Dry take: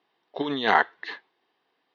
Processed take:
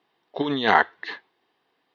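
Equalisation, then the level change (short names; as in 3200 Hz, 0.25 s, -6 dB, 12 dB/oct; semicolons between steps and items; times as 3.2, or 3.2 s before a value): low shelf 110 Hz +11 dB; +2.0 dB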